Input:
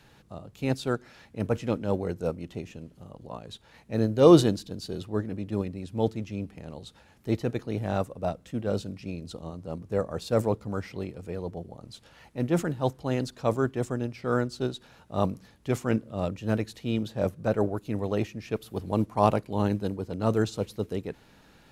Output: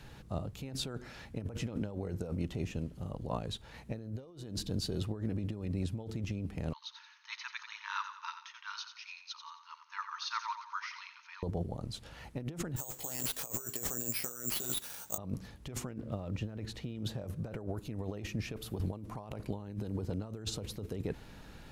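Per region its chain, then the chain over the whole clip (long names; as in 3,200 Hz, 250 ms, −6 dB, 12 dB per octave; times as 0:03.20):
0:06.73–0:11.43: linear-phase brick-wall band-pass 880–6,600 Hz + repeating echo 89 ms, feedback 43%, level −9.5 dB
0:12.76–0:15.18: high-pass filter 750 Hz 6 dB per octave + double-tracking delay 17 ms −2.5 dB + bad sample-rate conversion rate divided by 6×, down none, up zero stuff
0:15.91–0:16.95: one scale factor per block 7 bits + high-shelf EQ 6,800 Hz −12 dB
whole clip: low-shelf EQ 98 Hz +11 dB; compressor whose output falls as the input rises −34 dBFS, ratio −1; level −5 dB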